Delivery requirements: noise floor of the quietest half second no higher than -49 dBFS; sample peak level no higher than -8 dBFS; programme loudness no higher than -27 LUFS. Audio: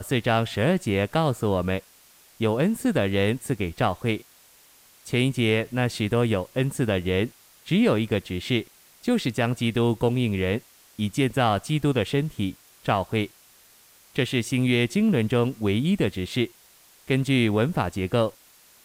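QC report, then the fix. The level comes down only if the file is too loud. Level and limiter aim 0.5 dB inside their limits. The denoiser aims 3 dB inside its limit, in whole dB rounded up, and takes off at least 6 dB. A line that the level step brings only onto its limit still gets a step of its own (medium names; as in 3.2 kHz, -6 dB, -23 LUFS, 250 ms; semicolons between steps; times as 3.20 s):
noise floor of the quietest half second -55 dBFS: pass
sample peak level -7.0 dBFS: fail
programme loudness -24.5 LUFS: fail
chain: trim -3 dB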